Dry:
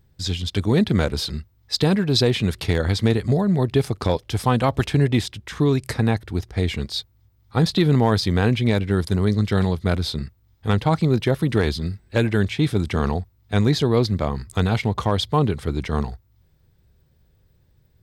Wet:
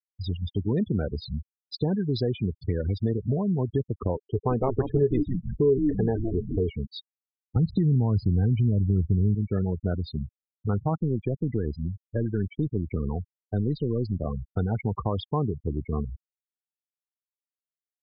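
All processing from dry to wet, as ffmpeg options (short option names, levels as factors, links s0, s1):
-filter_complex "[0:a]asettb=1/sr,asplit=3[s0][s1][s2];[s0]atrim=end=4.174[s3];[s1]atrim=start=4.17:end=6.7,asetpts=PTS-STARTPTS,afade=t=in:d=0.004:c=qsin,afade=t=out:st=2.526:d=0.004:c=qsin,equalizer=f=420:w=4.5:g=15,asplit=6[s4][s5][s6][s7][s8][s9];[s5]adelay=163,afreqshift=-120,volume=0.501[s10];[s6]adelay=326,afreqshift=-240,volume=0.195[s11];[s7]adelay=489,afreqshift=-360,volume=0.0759[s12];[s8]adelay=652,afreqshift=-480,volume=0.0299[s13];[s9]adelay=815,afreqshift=-600,volume=0.0116[s14];[s4][s10][s11][s12][s13][s14]amix=inputs=6:normalize=0,atrim=end_sample=111573[s15];[s2]atrim=start=6.696[s16];[s3][s15]acrossfade=d=0.004:c1=hsin:c2=qsin[s17];[s17][s16]acrossfade=d=0.004:c1=qsin:c2=hsin,asettb=1/sr,asplit=3[s18][s19][s20];[s18]atrim=end=7.564[s21];[s19]atrim=start=7.56:end=9.35,asetpts=PTS-STARTPTS,afade=t=in:d=0.004:c=qsin,afade=t=out:st=1.786:d=0.004:c=qsin,bass=f=250:g=13,treble=f=4000:g=-3,acompressor=threshold=0.282:ratio=2.5:attack=3.2:release=140:knee=1:detection=peak[s22];[s20]atrim=start=9.346[s23];[s21][s22]acrossfade=d=0.004:c1=hsin:c2=qsin[s24];[s24][s23]acrossfade=d=0.004:c1=qsin:c2=hsin,asettb=1/sr,asplit=3[s25][s26][s27];[s25]atrim=end=11.014[s28];[s26]atrim=start=11.01:end=14.25,asetpts=PTS-STARTPTS,afade=t=in:d=0.004:c=qsin,afade=t=out:st=3.236:d=0.004:c=qsin,aeval=exprs='if(lt(val(0),0),0.708*val(0),val(0))':c=same,acrossover=split=360|3000[s29][s30][s31];[s30]acompressor=threshold=0.0708:ratio=6:attack=3.2:release=140:knee=2.83:detection=peak[s32];[s29][s32][s31]amix=inputs=3:normalize=0[s33];[s27]atrim=start=14.246[s34];[s28][s33]acrossfade=d=0.004:c1=hsin:c2=qsin[s35];[s35][s34]acrossfade=d=0.004:c1=qsin:c2=hsin,afftfilt=real='re*gte(hypot(re,im),0.141)':imag='im*gte(hypot(re,im),0.141)':win_size=1024:overlap=0.75,acompressor=threshold=0.0447:ratio=2,highshelf=f=2100:g=-11.5"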